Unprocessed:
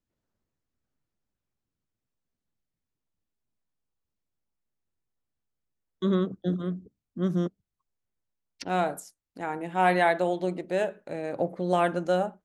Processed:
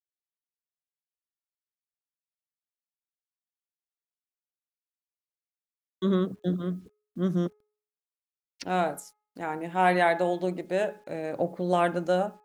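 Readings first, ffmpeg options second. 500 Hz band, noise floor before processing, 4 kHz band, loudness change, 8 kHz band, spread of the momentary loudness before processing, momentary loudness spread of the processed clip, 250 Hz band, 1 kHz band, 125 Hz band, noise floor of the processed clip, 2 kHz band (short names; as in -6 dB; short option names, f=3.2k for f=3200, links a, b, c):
0.0 dB, under -85 dBFS, 0.0 dB, 0.0 dB, 0.0 dB, 12 LU, 12 LU, 0.0 dB, 0.0 dB, 0.0 dB, under -85 dBFS, 0.0 dB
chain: -af "acrusher=bits=10:mix=0:aa=0.000001,bandreject=f=421.9:t=h:w=4,bandreject=f=843.8:t=h:w=4,bandreject=f=1.2657k:t=h:w=4,bandreject=f=1.6876k:t=h:w=4,bandreject=f=2.1095k:t=h:w=4,bandreject=f=2.5314k:t=h:w=4"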